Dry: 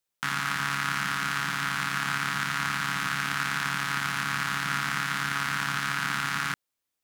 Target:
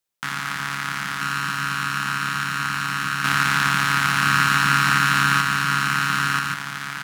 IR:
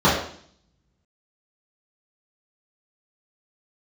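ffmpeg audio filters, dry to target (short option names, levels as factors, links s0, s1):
-filter_complex "[0:a]asettb=1/sr,asplit=3[s0][s1][s2];[s0]atrim=end=3.244[s3];[s1]atrim=start=3.24:end=5.41,asetpts=PTS-STARTPTS,afade=t=in:d=0.004:c=qsin,afade=t=out:st=2.166:d=0.004:c=qsin,acontrast=88[s4];[s2]atrim=start=5.406[s5];[s3][s4]acrossfade=d=0.004:c1=hsin:c2=qsin[s6];[s6][s5]acrossfade=d=0.004:c1=qsin:c2=hsin,aecho=1:1:985:0.708,volume=1.19"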